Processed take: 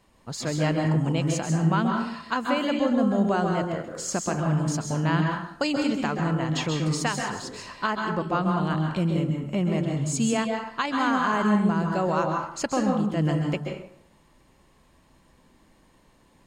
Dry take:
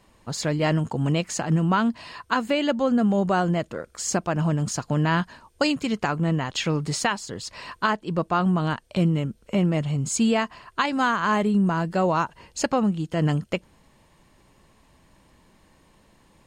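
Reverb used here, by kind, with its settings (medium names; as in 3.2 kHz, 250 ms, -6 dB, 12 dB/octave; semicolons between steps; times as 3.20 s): plate-style reverb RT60 0.68 s, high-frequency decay 0.65×, pre-delay 120 ms, DRR 2 dB; trim -4 dB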